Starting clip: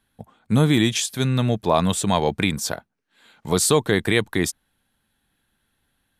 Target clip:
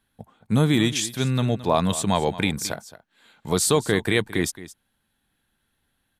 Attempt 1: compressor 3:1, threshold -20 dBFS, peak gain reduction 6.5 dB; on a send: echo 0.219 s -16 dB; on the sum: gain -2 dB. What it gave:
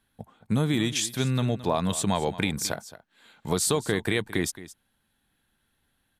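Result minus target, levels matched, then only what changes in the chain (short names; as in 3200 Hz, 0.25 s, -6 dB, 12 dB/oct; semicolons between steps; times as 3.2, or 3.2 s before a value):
compressor: peak gain reduction +6.5 dB
remove: compressor 3:1, threshold -20 dBFS, peak gain reduction 6.5 dB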